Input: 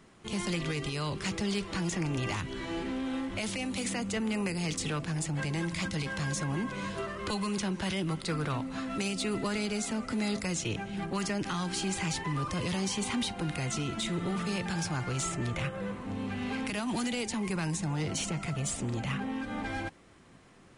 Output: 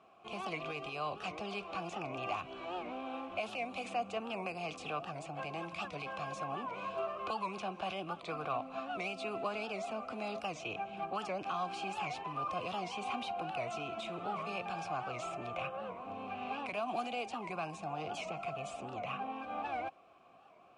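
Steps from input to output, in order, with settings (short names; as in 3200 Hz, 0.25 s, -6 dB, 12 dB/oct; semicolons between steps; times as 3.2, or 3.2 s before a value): vowel filter a; low shelf 92 Hz +8.5 dB; record warp 78 rpm, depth 160 cents; gain +9 dB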